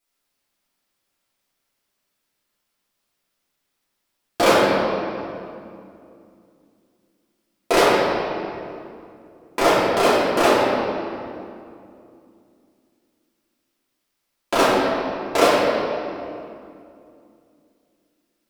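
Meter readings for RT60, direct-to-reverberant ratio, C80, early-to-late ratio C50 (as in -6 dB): 2.5 s, -10.0 dB, 0.0 dB, -2.0 dB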